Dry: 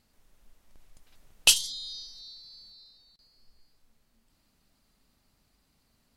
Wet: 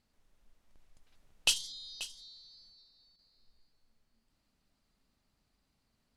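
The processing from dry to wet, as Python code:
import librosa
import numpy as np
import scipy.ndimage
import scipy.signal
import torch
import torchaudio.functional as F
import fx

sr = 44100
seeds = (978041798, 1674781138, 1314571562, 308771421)

y = fx.high_shelf(x, sr, hz=11000.0, db=-11.0)
y = y + 10.0 ** (-14.0 / 20.0) * np.pad(y, (int(535 * sr / 1000.0), 0))[:len(y)]
y = F.gain(torch.from_numpy(y), -7.0).numpy()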